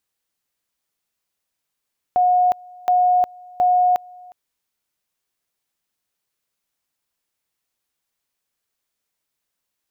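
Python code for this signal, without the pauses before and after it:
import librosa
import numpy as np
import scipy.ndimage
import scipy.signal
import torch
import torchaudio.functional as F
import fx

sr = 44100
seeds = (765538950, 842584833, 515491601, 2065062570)

y = fx.two_level_tone(sr, hz=724.0, level_db=-12.5, drop_db=26.0, high_s=0.36, low_s=0.36, rounds=3)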